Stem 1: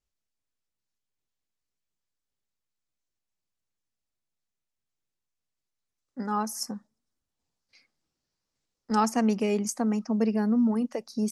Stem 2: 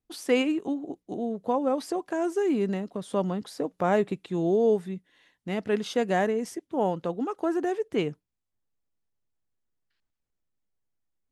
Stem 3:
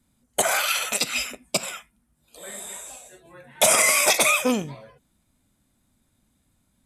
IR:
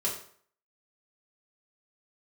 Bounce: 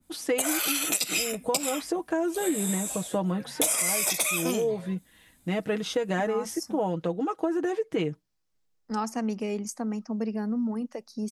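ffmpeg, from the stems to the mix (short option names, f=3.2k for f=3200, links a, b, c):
-filter_complex "[0:a]volume=-4.5dB[a];[1:a]bandreject=f=4.5k:w=24,aecho=1:1:6.3:0.65,volume=2dB[b];[2:a]highshelf=f=8.1k:g=10.5,dynaudnorm=f=210:g=11:m=9.5dB,adynamicequalizer=threshold=0.0316:dfrequency=2200:dqfactor=0.7:tfrequency=2200:tqfactor=0.7:attack=5:release=100:ratio=0.375:range=2:mode=boostabove:tftype=highshelf,volume=-0.5dB[c];[a][b][c]amix=inputs=3:normalize=0,acompressor=threshold=-23dB:ratio=10"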